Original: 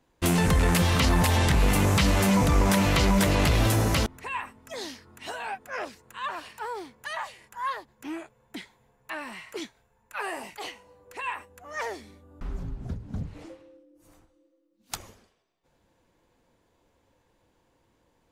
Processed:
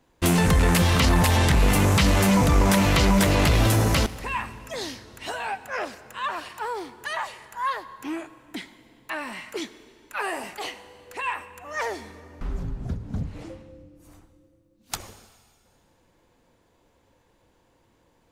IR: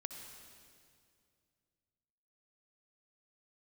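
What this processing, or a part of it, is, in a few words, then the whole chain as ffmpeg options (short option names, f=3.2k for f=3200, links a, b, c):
saturated reverb return: -filter_complex "[0:a]asplit=2[a][b];[1:a]atrim=start_sample=2205[c];[b][c]afir=irnorm=-1:irlink=0,asoftclip=type=tanh:threshold=-28.5dB,volume=-4.5dB[d];[a][d]amix=inputs=2:normalize=0,volume=1.5dB"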